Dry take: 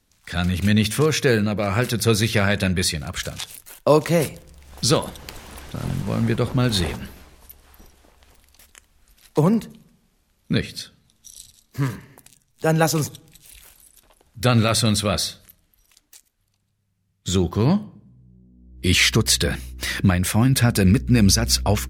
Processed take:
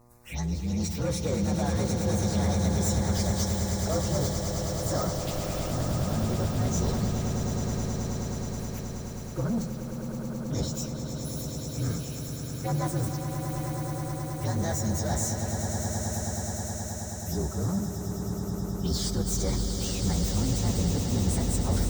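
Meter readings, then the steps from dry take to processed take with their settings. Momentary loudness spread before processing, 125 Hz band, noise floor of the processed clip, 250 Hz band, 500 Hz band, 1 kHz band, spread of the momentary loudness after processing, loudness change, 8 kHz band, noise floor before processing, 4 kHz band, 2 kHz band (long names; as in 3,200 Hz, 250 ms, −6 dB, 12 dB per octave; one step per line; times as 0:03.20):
15 LU, −5.0 dB, −36 dBFS, −7.0 dB, −8.5 dB, −7.0 dB, 7 LU, −9.0 dB, −5.5 dB, −68 dBFS, −12.5 dB, −16.0 dB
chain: partials spread apart or drawn together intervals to 118%
reversed playback
downward compressor 6 to 1, threshold −31 dBFS, peak gain reduction 17.5 dB
reversed playback
soft clipping −30.5 dBFS, distortion −14 dB
phaser swept by the level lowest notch 520 Hz, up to 2,700 Hz, full sweep at −34.5 dBFS
hum with harmonics 120 Hz, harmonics 10, −66 dBFS −4 dB per octave
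on a send: echo that builds up and dies away 106 ms, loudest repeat 8, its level −9.5 dB
on the sum: level +7 dB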